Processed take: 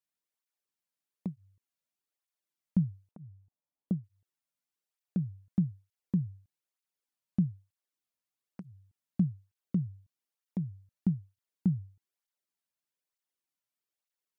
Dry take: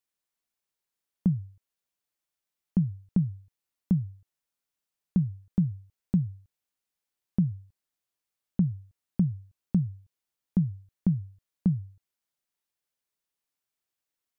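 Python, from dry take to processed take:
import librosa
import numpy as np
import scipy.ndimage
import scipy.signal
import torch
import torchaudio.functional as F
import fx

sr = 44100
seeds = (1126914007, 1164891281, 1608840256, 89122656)

y = fx.tracing_dist(x, sr, depth_ms=0.065)
y = fx.lowpass_res(y, sr, hz=800.0, q=1.5, at=(3.11, 4.04))
y = fx.flanger_cancel(y, sr, hz=1.1, depth_ms=2.8)
y = F.gain(torch.from_numpy(y), -2.0).numpy()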